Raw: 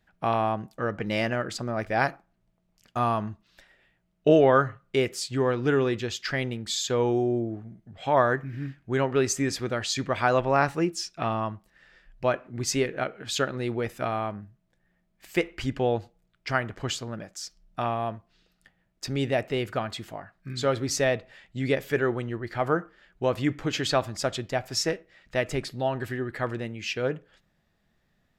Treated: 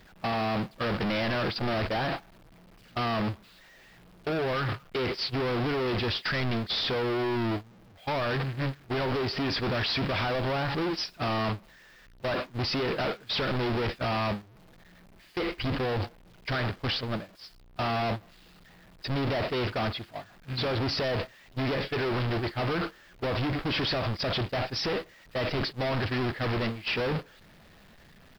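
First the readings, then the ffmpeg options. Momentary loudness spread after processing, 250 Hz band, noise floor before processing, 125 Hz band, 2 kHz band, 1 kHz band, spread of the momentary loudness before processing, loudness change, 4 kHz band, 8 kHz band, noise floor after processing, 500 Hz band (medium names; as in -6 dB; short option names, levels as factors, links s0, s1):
8 LU, -2.0 dB, -71 dBFS, +0.5 dB, -1.0 dB, -3.5 dB, 11 LU, -2.5 dB, +2.5 dB, -18.0 dB, -55 dBFS, -4.5 dB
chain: -af "aeval=exprs='val(0)+0.5*0.0473*sgn(val(0))':c=same,agate=range=0.0398:threshold=0.0447:ratio=16:detection=peak,acompressor=threshold=0.0562:ratio=6,aresample=11025,volume=47.3,asoftclip=hard,volume=0.0211,aresample=44100,acrusher=bits=10:mix=0:aa=0.000001,volume=2"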